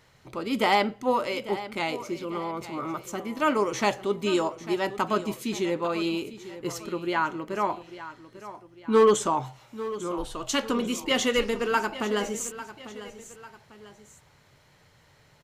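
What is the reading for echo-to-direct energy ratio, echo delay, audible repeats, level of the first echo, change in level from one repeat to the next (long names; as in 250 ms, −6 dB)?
−13.5 dB, 847 ms, 2, −14.5 dB, −7.0 dB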